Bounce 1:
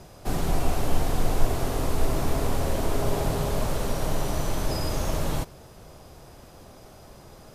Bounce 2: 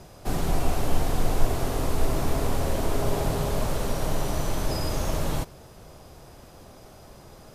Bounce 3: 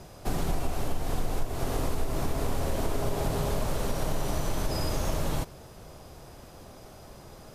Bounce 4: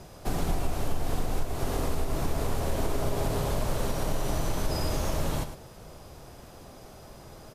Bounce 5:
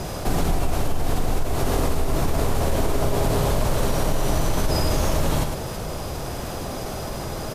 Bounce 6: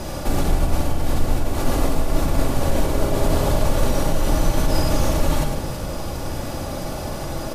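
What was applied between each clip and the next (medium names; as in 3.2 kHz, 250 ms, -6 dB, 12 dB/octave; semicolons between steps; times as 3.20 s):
no audible change
compression 6:1, threshold -23 dBFS, peak gain reduction 12 dB
delay 106 ms -10.5 dB
level flattener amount 50%; trim +4 dB
simulated room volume 3600 m³, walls furnished, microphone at 2.4 m; trim -1 dB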